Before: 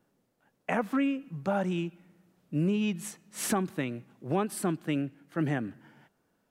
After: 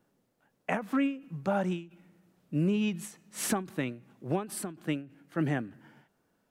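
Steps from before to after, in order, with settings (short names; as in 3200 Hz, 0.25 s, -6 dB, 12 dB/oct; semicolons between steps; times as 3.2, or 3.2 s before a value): ending taper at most 150 dB/s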